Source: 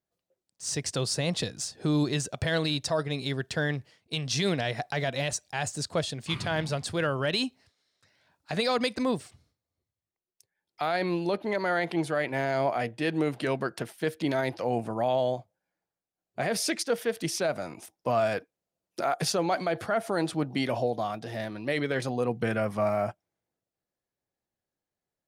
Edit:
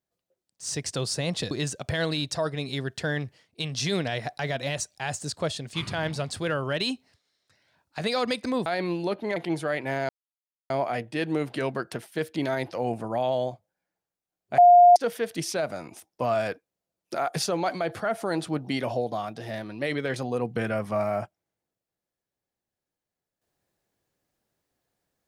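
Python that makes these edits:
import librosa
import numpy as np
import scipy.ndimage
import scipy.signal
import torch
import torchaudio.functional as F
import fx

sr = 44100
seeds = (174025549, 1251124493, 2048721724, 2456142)

y = fx.edit(x, sr, fx.cut(start_s=1.51, length_s=0.53),
    fx.cut(start_s=9.19, length_s=1.69),
    fx.cut(start_s=11.58, length_s=0.25),
    fx.insert_silence(at_s=12.56, length_s=0.61),
    fx.bleep(start_s=16.44, length_s=0.38, hz=707.0, db=-10.0), tone=tone)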